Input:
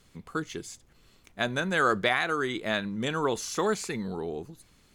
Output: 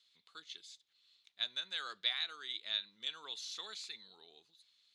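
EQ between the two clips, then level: band-pass filter 3.8 kHz, Q 5.6; +2.5 dB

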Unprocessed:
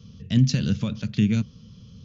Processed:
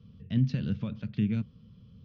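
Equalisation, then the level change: Gaussian low-pass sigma 1.8 samples; distance through air 150 m; -7.0 dB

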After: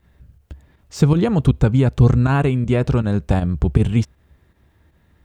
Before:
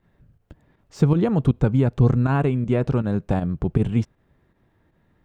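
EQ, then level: peaking EQ 67 Hz +15 dB 0.66 oct; treble shelf 2.4 kHz +10 dB; +2.0 dB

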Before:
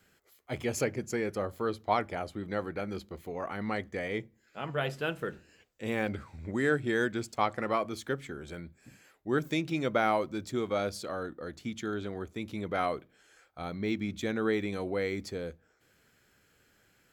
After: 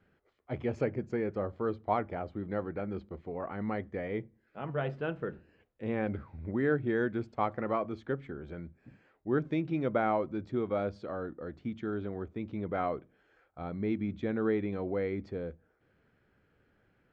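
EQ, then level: tape spacing loss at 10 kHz 43 dB; +1.5 dB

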